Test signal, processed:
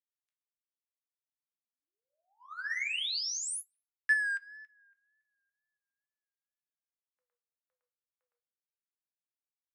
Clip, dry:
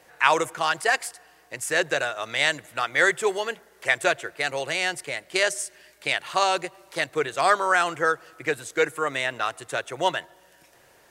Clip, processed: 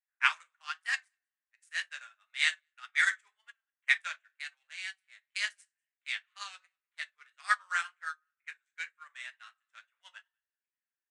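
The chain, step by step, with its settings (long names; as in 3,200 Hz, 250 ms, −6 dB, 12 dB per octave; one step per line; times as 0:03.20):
adaptive Wiener filter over 9 samples
downsampling to 22,050 Hz
high-pass filter 1,400 Hz 24 dB per octave
rectangular room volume 250 cubic metres, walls furnished, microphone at 1.3 metres
tape wow and flutter 65 cents
on a send: single-tap delay 197 ms −23.5 dB
on the sum: expander for the loud parts 2.5 to 1, over −41 dBFS
level −2.5 dB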